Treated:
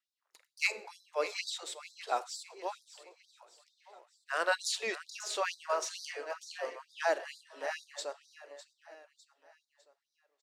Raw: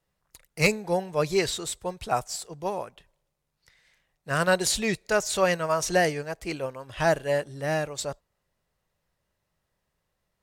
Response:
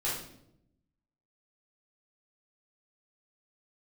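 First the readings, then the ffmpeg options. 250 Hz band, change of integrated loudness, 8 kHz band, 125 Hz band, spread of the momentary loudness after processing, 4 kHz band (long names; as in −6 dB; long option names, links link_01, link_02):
−23.0 dB, −9.5 dB, −10.0 dB, below −40 dB, 20 LU, −6.5 dB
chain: -filter_complex "[0:a]acrossover=split=330 7100:gain=0.0631 1 0.224[link_01][link_02][link_03];[link_01][link_02][link_03]amix=inputs=3:normalize=0,aecho=1:1:604|1208|1812|2416:0.211|0.0951|0.0428|0.0193,asplit=2[link_04][link_05];[1:a]atrim=start_sample=2205[link_06];[link_05][link_06]afir=irnorm=-1:irlink=0,volume=-19.5dB[link_07];[link_04][link_07]amix=inputs=2:normalize=0,afftfilt=real='re*gte(b*sr/1024,210*pow(3600/210,0.5+0.5*sin(2*PI*2.2*pts/sr)))':imag='im*gte(b*sr/1024,210*pow(3600/210,0.5+0.5*sin(2*PI*2.2*pts/sr)))':win_size=1024:overlap=0.75,volume=-6.5dB"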